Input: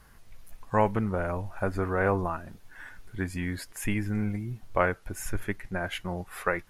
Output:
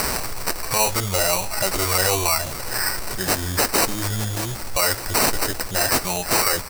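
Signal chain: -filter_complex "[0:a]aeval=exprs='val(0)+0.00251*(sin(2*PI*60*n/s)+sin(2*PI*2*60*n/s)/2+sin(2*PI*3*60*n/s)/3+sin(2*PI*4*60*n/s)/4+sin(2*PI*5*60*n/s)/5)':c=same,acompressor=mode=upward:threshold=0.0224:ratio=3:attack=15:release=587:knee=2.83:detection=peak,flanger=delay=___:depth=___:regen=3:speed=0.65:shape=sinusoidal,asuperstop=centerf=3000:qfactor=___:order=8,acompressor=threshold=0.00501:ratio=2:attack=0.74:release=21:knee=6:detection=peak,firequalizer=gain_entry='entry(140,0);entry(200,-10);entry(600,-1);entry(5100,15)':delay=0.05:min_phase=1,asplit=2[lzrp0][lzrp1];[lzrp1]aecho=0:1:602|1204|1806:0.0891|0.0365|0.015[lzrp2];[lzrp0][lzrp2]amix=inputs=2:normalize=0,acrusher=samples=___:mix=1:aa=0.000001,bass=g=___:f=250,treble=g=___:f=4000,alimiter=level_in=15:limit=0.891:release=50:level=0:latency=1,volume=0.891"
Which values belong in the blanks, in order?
4.7, 9.1, 0.68, 13, -6, 12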